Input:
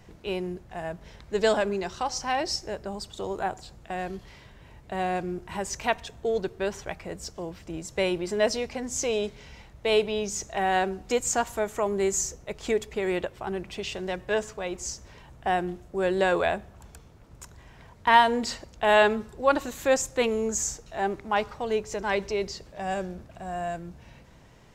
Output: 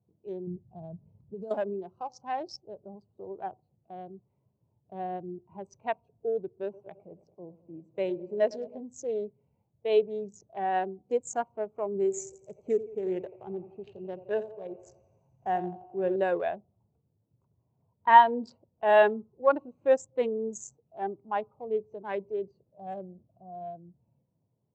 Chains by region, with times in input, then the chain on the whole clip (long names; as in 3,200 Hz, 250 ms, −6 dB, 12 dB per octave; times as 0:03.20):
0:00.47–0:01.51: downward compressor 16 to 1, threshold −29 dBFS + bass and treble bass +9 dB, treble +9 dB
0:06.63–0:08.81: high-pass filter 87 Hz + feedback echo at a low word length 106 ms, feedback 80%, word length 8 bits, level −12 dB
0:11.95–0:16.16: low-shelf EQ 140 Hz +5 dB + feedback echo with a high-pass in the loop 86 ms, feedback 83%, high-pass 380 Hz, level −7 dB
whole clip: adaptive Wiener filter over 25 samples; Chebyshev band-pass filter 100–7,900 Hz, order 3; every bin expanded away from the loudest bin 1.5 to 1